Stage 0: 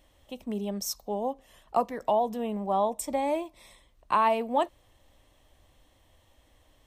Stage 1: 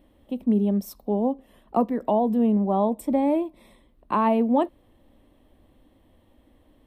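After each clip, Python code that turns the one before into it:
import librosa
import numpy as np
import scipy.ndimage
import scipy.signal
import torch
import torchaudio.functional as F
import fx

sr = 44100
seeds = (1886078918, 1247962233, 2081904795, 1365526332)

y = fx.curve_eq(x, sr, hz=(130.0, 230.0, 680.0, 3900.0, 6500.0, 10000.0), db=(0, 12, -1, -8, -19, -6))
y = y * 10.0 ** (2.5 / 20.0)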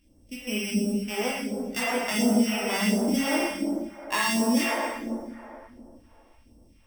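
y = np.r_[np.sort(x[:len(x) // 16 * 16].reshape(-1, 16), axis=1).ravel(), x[len(x) // 16 * 16:]]
y = fx.rev_plate(y, sr, seeds[0], rt60_s=2.8, hf_ratio=0.45, predelay_ms=0, drr_db=-5.5)
y = fx.phaser_stages(y, sr, stages=2, low_hz=130.0, high_hz=2100.0, hz=1.4, feedback_pct=40)
y = y * 10.0 ** (-6.0 / 20.0)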